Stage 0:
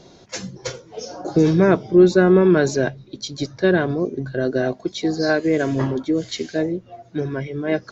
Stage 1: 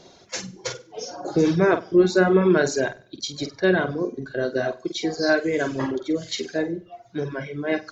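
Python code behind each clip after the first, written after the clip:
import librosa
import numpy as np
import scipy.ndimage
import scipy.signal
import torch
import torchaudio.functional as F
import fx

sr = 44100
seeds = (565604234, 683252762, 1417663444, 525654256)

y = fx.low_shelf(x, sr, hz=330.0, db=-7.5)
y = fx.room_flutter(y, sr, wall_m=8.3, rt60_s=0.48)
y = fx.dereverb_blind(y, sr, rt60_s=0.61)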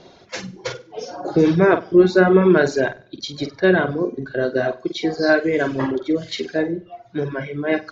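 y = scipy.signal.sosfilt(scipy.signal.butter(2, 3900.0, 'lowpass', fs=sr, output='sos'), x)
y = y * 10.0 ** (4.0 / 20.0)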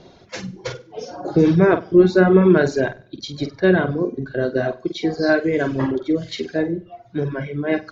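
y = fx.low_shelf(x, sr, hz=250.0, db=8.0)
y = y * 10.0 ** (-2.5 / 20.0)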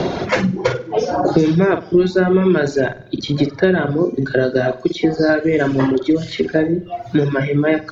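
y = fx.band_squash(x, sr, depth_pct=100)
y = y * 10.0 ** (2.5 / 20.0)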